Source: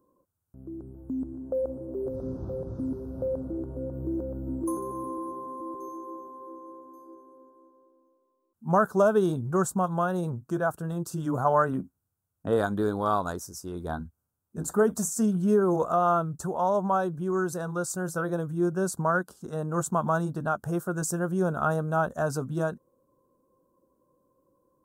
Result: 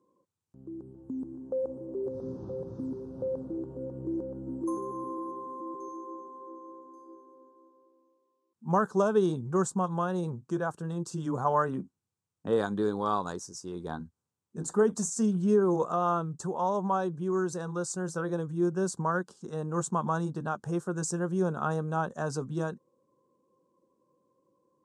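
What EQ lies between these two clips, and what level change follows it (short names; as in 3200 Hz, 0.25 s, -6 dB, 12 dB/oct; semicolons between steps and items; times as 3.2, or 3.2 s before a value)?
speaker cabinet 150–8000 Hz, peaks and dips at 270 Hz -4 dB, 650 Hz -9 dB, 1400 Hz -7 dB; 0.0 dB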